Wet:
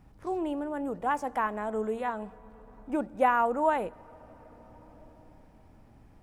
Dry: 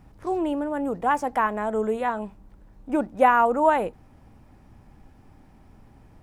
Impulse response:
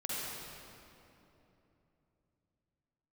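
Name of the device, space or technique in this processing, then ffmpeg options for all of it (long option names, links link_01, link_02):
compressed reverb return: -filter_complex "[0:a]asplit=2[link_01][link_02];[1:a]atrim=start_sample=2205[link_03];[link_02][link_03]afir=irnorm=-1:irlink=0,acompressor=threshold=-32dB:ratio=5,volume=-11.5dB[link_04];[link_01][link_04]amix=inputs=2:normalize=0,volume=-6.5dB"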